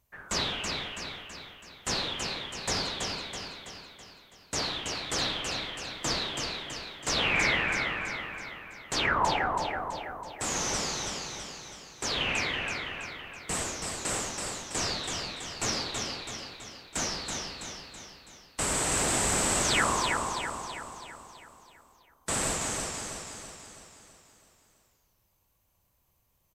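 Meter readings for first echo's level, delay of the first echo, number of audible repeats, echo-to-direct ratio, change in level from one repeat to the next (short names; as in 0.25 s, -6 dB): -4.5 dB, 0.328 s, 6, -3.0 dB, -5.5 dB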